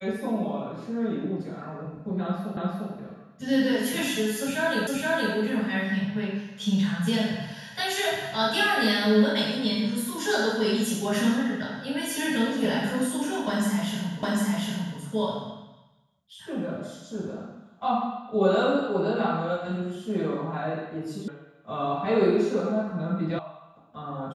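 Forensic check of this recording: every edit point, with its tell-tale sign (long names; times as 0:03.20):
0:02.57: the same again, the last 0.35 s
0:04.87: the same again, the last 0.47 s
0:14.23: the same again, the last 0.75 s
0:21.28: cut off before it has died away
0:23.39: cut off before it has died away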